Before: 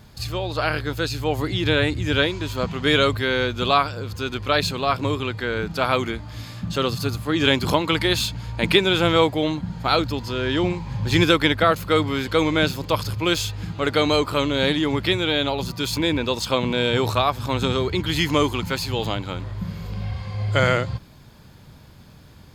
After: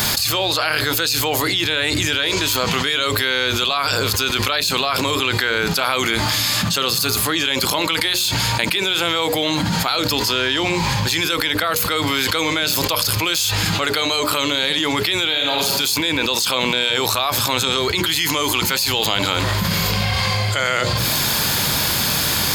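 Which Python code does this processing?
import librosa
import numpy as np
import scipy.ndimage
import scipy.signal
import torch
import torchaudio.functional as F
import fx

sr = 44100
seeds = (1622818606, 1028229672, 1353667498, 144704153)

y = fx.reverb_throw(x, sr, start_s=15.26, length_s=0.53, rt60_s=0.92, drr_db=4.0)
y = fx.tilt_eq(y, sr, slope=3.5)
y = fx.hum_notches(y, sr, base_hz=60, count=10)
y = fx.env_flatten(y, sr, amount_pct=100)
y = y * 10.0 ** (-9.5 / 20.0)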